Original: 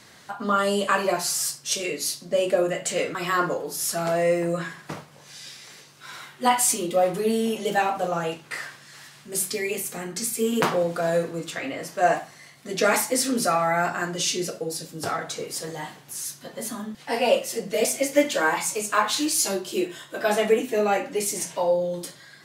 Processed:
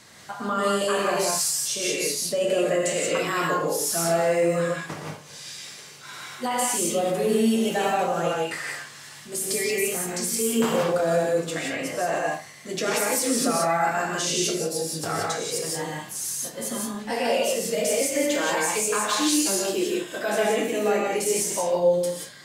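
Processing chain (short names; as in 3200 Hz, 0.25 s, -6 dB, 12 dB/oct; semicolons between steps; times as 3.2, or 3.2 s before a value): bell 7700 Hz +3.5 dB 0.65 oct; limiter -17 dBFS, peak gain reduction 10.5 dB; non-linear reverb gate 0.2 s rising, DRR -1.5 dB; gain -1 dB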